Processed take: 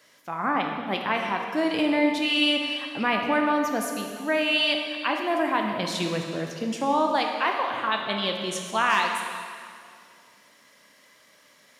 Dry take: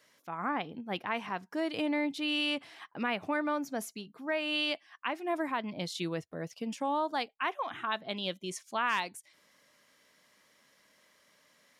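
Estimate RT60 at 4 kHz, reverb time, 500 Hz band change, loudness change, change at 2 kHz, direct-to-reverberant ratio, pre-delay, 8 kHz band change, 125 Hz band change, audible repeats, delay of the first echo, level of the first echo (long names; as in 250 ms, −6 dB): 2.0 s, 2.2 s, +9.0 dB, +9.0 dB, +9.0 dB, 2.0 dB, 5 ms, +9.0 dB, +7.5 dB, no echo audible, no echo audible, no echo audible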